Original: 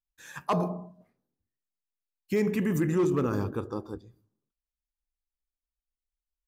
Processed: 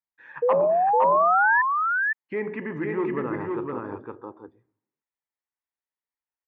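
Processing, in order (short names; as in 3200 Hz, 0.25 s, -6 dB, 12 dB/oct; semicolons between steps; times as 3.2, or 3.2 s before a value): speaker cabinet 180–2400 Hz, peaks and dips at 190 Hz -8 dB, 920 Hz +8 dB, 1900 Hz +7 dB; painted sound rise, 0.42–1.62, 470–1800 Hz -19 dBFS; echo 0.511 s -3 dB; gain -1.5 dB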